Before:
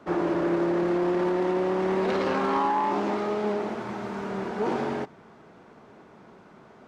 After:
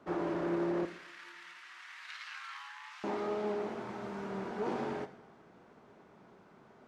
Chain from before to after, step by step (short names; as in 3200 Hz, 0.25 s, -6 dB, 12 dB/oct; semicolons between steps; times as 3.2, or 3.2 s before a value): 0.85–3.04 inverse Chebyshev high-pass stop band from 460 Hz, stop band 60 dB; two-slope reverb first 0.79 s, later 2.4 s, from -18 dB, DRR 10 dB; gain -8.5 dB